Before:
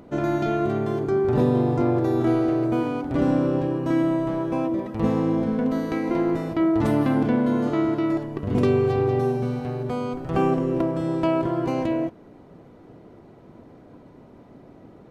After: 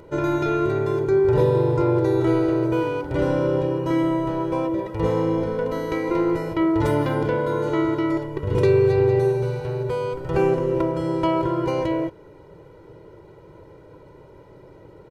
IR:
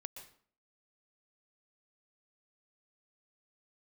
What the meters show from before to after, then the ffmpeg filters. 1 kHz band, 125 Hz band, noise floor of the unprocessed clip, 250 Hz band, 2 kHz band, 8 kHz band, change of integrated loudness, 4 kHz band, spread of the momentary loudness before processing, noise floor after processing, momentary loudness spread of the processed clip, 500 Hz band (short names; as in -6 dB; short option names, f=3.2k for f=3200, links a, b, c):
+1.5 dB, +2.0 dB, -49 dBFS, -1.5 dB, +3.5 dB, n/a, +1.5 dB, +3.0 dB, 6 LU, -47 dBFS, 7 LU, +3.5 dB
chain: -af "aecho=1:1:2.1:0.94"